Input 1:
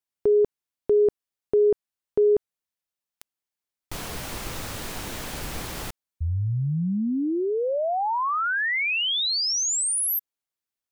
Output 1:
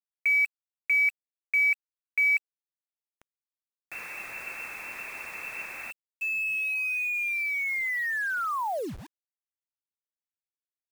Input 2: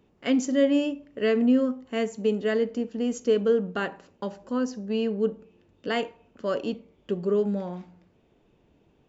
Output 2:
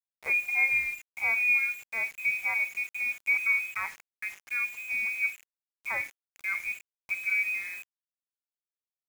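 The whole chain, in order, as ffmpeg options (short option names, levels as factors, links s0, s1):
-af "lowpass=f=2300:t=q:w=0.5098,lowpass=f=2300:t=q:w=0.6013,lowpass=f=2300:t=q:w=0.9,lowpass=f=2300:t=q:w=2.563,afreqshift=-2700,acrusher=bits=6:mix=0:aa=0.000001,volume=0.596"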